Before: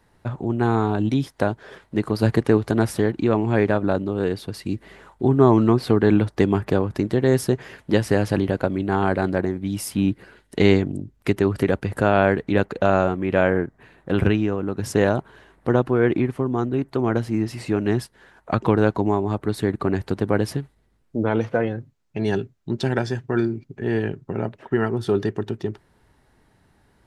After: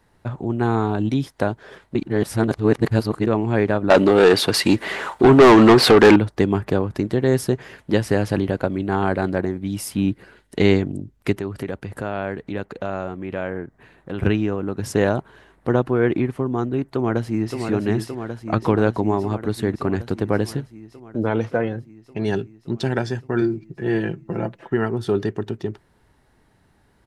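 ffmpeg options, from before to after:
ffmpeg -i in.wav -filter_complex "[0:a]asettb=1/sr,asplit=3[link_01][link_02][link_03];[link_01]atrim=end=3.904[link_04];[link_02]atrim=start=3.9:end=6.16,asetpts=PTS-STARTPTS,afade=type=in:duration=0.004:curve=qsin,afade=type=out:start_time=2.256:duration=0.004:curve=qsin,asplit=2[link_05][link_06];[link_06]highpass=frequency=720:poles=1,volume=27dB,asoftclip=type=tanh:threshold=-1.5dB[link_07];[link_05][link_07]amix=inputs=2:normalize=0,lowpass=frequency=7200:poles=1,volume=-6dB[link_08];[link_03]atrim=start=6.156[link_09];[link_04][link_08]acrossfade=duration=0.004:curve1=hsin:curve2=qsin[link_10];[link_10][link_09]acrossfade=duration=0.004:curve1=qsin:curve2=hsin,asettb=1/sr,asplit=3[link_11][link_12][link_13];[link_11]atrim=end=11.354[link_14];[link_12]atrim=start=11.35:end=14.23,asetpts=PTS-STARTPTS,afade=type=in:duration=0.004:curve=qsin,afade=type=out:start_time=2.876:duration=0.004:curve=qsin,acompressor=threshold=-37dB:ratio=1.5:attack=3.2:release=140:knee=1:detection=peak[link_15];[link_13]atrim=start=14.226[link_16];[link_14][link_15]acrossfade=duration=0.004:curve1=hsin:curve2=qsin[link_17];[link_17][link_16]acrossfade=duration=0.004:curve1=qsin:curve2=hsin,asplit=2[link_18][link_19];[link_19]afade=type=in:start_time=16.84:duration=0.01,afade=type=out:start_time=17.57:duration=0.01,aecho=0:1:570|1140|1710|2280|2850|3420|3990|4560|5130|5700|6270|6840:0.501187|0.37589|0.281918|0.211438|0.158579|0.118934|0.0892006|0.0669004|0.0501753|0.0376315|0.0282236|0.0211677[link_20];[link_18][link_20]amix=inputs=2:normalize=0,asettb=1/sr,asplit=3[link_21][link_22][link_23];[link_21]atrim=end=23.414[link_24];[link_22]atrim=start=23.41:end=24.73,asetpts=PTS-STARTPTS,afade=type=in:duration=0.004:curve=qsin,afade=type=out:start_time=1.316:duration=0.004:curve=qsin,aecho=1:1:5.9:0.65,atrim=end_sample=58212[link_25];[link_23]atrim=start=24.726[link_26];[link_24][link_25]acrossfade=duration=0.004:curve1=hsin:curve2=qsin[link_27];[link_27][link_26]acrossfade=duration=0.004:curve1=qsin:curve2=hsin,asplit=3[link_28][link_29][link_30];[link_28]atrim=end=1.952[link_31];[link_29]atrim=start=1.948:end=3.272,asetpts=PTS-STARTPTS,areverse[link_32];[link_30]atrim=start=3.268[link_33];[link_31][link_32]acrossfade=duration=0.004:curve1=hsin:curve2=hsin[link_34];[link_34][link_33]acrossfade=duration=0.004:curve1=hsin:curve2=hsin" out.wav

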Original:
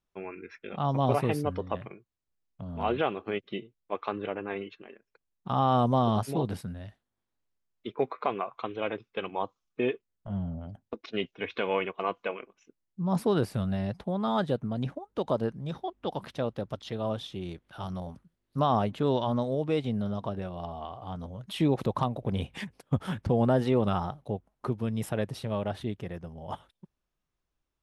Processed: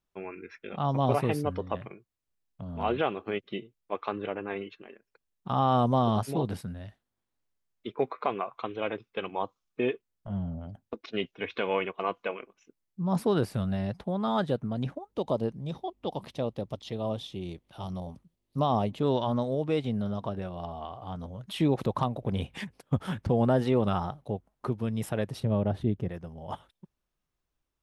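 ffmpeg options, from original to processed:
ffmpeg -i in.wav -filter_complex "[0:a]asettb=1/sr,asplit=3[link_01][link_02][link_03];[link_01]atrim=end=15.114[link_04];[link_02]atrim=start=15.11:end=19.03,asetpts=PTS-STARTPTS,afade=type=in:duration=0.004:curve=qsin,afade=type=out:start_time=3.916:duration=0.004:curve=qsin,equalizer=frequency=1500:width_type=o:width=0.59:gain=-10.5[link_05];[link_03]atrim=start=19.026[link_06];[link_04][link_05]acrossfade=duration=0.004:curve1=hsin:curve2=qsin[link_07];[link_07][link_06]acrossfade=duration=0.004:curve1=qsin:curve2=hsin,asettb=1/sr,asplit=3[link_08][link_09][link_10];[link_08]atrim=end=25.404[link_11];[link_09]atrim=start=25.4:end=26.09,asetpts=PTS-STARTPTS,afade=type=in:duration=0.004:curve=qsin,afade=type=out:start_time=0.686:duration=0.004:curve=qsin,tiltshelf=frequency=710:gain=7.5[link_12];[link_10]atrim=start=26.086[link_13];[link_11][link_12]acrossfade=duration=0.004:curve1=hsin:curve2=qsin[link_14];[link_14][link_13]acrossfade=duration=0.004:curve1=qsin:curve2=hsin" out.wav

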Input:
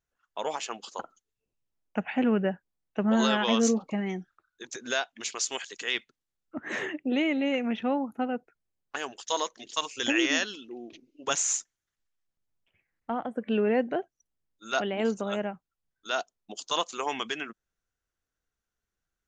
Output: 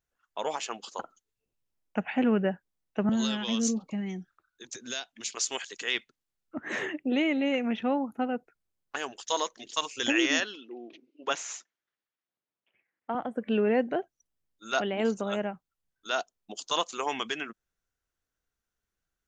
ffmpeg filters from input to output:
ffmpeg -i in.wav -filter_complex "[0:a]asettb=1/sr,asplit=3[link_01][link_02][link_03];[link_01]atrim=end=3.094[link_04];[link_02]atrim=start=3.09:end=5.37,asetpts=PTS-STARTPTS,afade=type=in:duration=0.004:curve=qsin,afade=type=out:start_time=2.276:duration=0.004:curve=qsin,acrossover=split=260|3000[link_05][link_06][link_07];[link_06]acompressor=threshold=-60dB:ratio=1.5:attack=3.2:release=140:knee=2.83:detection=peak[link_08];[link_05][link_08][link_07]amix=inputs=3:normalize=0[link_09];[link_03]atrim=start=5.366[link_10];[link_04][link_09]acrossfade=duration=0.004:curve1=hsin:curve2=qsin[link_11];[link_11][link_10]acrossfade=duration=0.004:curve1=qsin:curve2=hsin,asettb=1/sr,asplit=3[link_12][link_13][link_14];[link_12]atrim=end=10.404[link_15];[link_13]atrim=start=10.4:end=13.15,asetpts=PTS-STARTPTS,afade=type=in:duration=0.004:curve=qsin,afade=type=out:start_time=2.746:duration=0.004:curve=qsin,highpass=260,lowpass=3600[link_16];[link_14]atrim=start=13.146[link_17];[link_15][link_16]acrossfade=duration=0.004:curve1=hsin:curve2=qsin[link_18];[link_18][link_17]acrossfade=duration=0.004:curve1=qsin:curve2=hsin" out.wav

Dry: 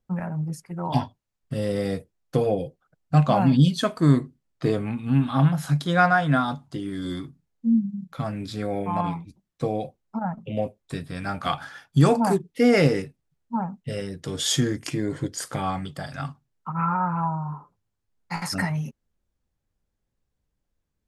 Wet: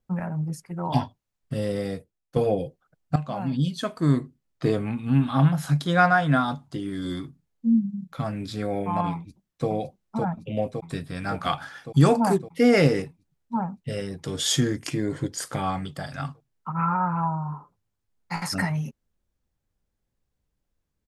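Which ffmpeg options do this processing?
ffmpeg -i in.wav -filter_complex "[0:a]asplit=2[link_01][link_02];[link_02]afade=type=in:start_time=9.14:duration=0.01,afade=type=out:start_time=9.68:duration=0.01,aecho=0:1:560|1120|1680|2240|2800|3360|3920|4480|5040|5600|6160|6720:0.707946|0.495562|0.346893|0.242825|0.169978|0.118984|0.0832891|0.0583024|0.0408117|0.0285682|0.0199977|0.0139984[link_03];[link_01][link_03]amix=inputs=2:normalize=0,asplit=3[link_04][link_05][link_06];[link_04]atrim=end=2.36,asetpts=PTS-STARTPTS,afade=type=out:start_time=1.53:duration=0.83:silence=0.237137[link_07];[link_05]atrim=start=2.36:end=3.16,asetpts=PTS-STARTPTS,afade=type=in:duration=0.004:curve=hsin:silence=0.237137,afade=type=out:start_time=0.796:duration=0.004:curve=hsin:silence=0.188365[link_08];[link_06]atrim=start=3.16,asetpts=PTS-STARTPTS,afade=type=in:duration=1.5:silence=0.188365[link_09];[link_07][link_08][link_09]concat=n=3:v=0:a=1" out.wav

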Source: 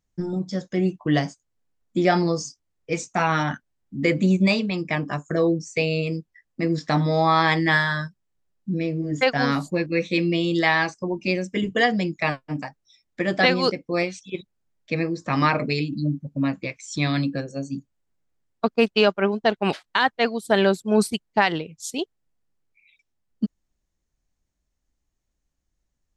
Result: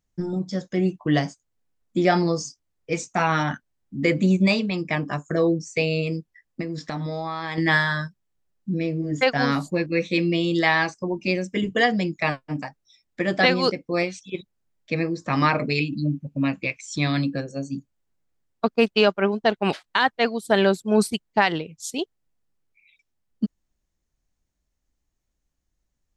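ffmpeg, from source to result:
ffmpeg -i in.wav -filter_complex "[0:a]asettb=1/sr,asplit=3[link_01][link_02][link_03];[link_01]atrim=end=6.614[link_04];[link_02]atrim=start=6.61:end=7.58,asetpts=PTS-STARTPTS,afade=type=in:duration=0.004:curve=qsin,afade=type=out:start_time=0.966:duration=0.004:curve=qsin,acompressor=threshold=-26dB:ratio=6:attack=3.2:release=140:knee=1:detection=peak[link_05];[link_03]atrim=start=7.576[link_06];[link_04][link_05]acrossfade=duration=0.004:curve1=hsin:curve2=qsin[link_07];[link_07][link_06]acrossfade=duration=0.004:curve1=qsin:curve2=hsin,asettb=1/sr,asplit=3[link_08][link_09][link_10];[link_08]atrim=end=15.754[link_11];[link_09]atrim=start=15.75:end=16.81,asetpts=PTS-STARTPTS,afade=type=in:duration=0.004:curve=qsin,afade=type=out:start_time=1.056:duration=0.004:curve=qsin,equalizer=frequency=2600:width=3.3:gain=9[link_12];[link_10]atrim=start=16.806[link_13];[link_11][link_12]acrossfade=duration=0.004:curve1=hsin:curve2=qsin[link_14];[link_14][link_13]acrossfade=duration=0.004:curve1=qsin:curve2=hsin" out.wav

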